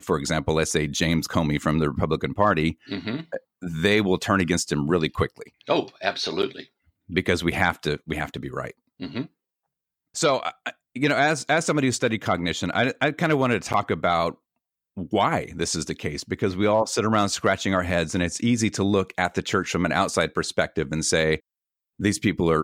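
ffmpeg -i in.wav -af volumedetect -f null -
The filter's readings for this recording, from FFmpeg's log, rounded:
mean_volume: -24.4 dB
max_volume: -5.1 dB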